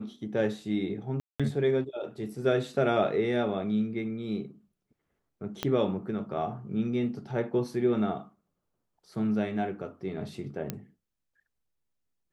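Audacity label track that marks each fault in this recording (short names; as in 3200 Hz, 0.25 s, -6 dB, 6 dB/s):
1.200000	1.400000	gap 0.196 s
5.630000	5.630000	pop -14 dBFS
10.700000	10.700000	pop -16 dBFS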